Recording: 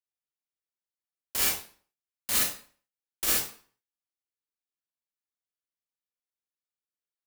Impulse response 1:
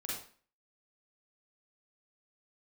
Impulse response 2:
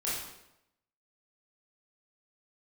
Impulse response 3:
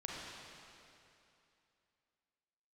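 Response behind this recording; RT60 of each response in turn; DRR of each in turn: 1; 0.45, 0.85, 2.8 seconds; −6.0, −8.5, −4.0 decibels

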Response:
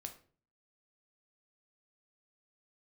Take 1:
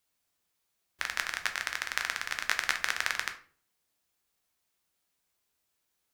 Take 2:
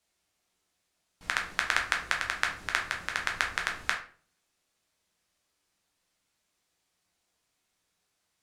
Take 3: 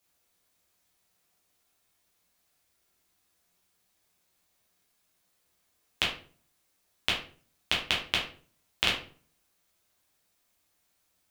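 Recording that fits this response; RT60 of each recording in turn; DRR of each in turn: 1; 0.45, 0.45, 0.45 seconds; 5.0, 0.5, −4.5 decibels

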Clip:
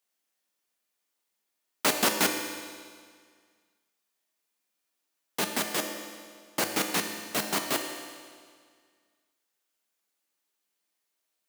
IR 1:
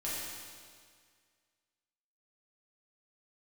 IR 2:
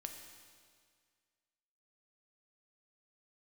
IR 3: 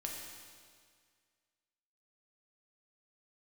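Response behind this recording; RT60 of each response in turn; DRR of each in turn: 2; 1.9, 1.9, 1.9 seconds; −9.0, 3.5, −1.5 decibels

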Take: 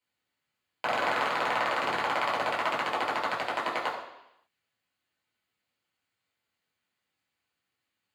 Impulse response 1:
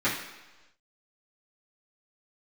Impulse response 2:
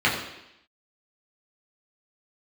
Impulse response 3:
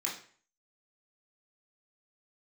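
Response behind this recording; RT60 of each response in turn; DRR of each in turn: 2; 1.1, 0.85, 0.45 seconds; −12.5, −6.5, −4.5 decibels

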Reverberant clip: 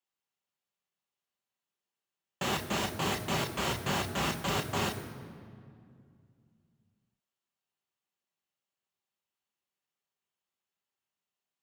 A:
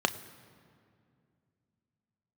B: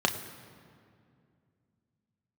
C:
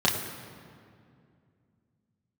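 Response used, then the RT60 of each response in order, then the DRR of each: B; 2.4, 2.3, 2.3 seconds; 9.5, 4.0, −4.0 decibels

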